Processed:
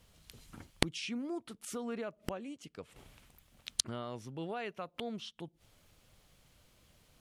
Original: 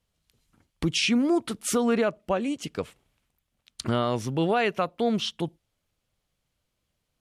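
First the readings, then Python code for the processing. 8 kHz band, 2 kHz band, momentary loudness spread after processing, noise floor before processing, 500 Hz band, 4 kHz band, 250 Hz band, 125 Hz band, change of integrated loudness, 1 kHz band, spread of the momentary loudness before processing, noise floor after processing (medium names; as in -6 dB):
-7.0 dB, -12.5 dB, 19 LU, -80 dBFS, -15.5 dB, -9.5 dB, -15.0 dB, -13.5 dB, -13.5 dB, -15.0 dB, 12 LU, -71 dBFS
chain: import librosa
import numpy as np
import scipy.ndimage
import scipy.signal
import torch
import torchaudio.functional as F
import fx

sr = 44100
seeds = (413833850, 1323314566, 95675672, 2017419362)

y = fx.gate_flip(x, sr, shuts_db=-31.0, range_db=-29)
y = y * librosa.db_to_amplitude(13.0)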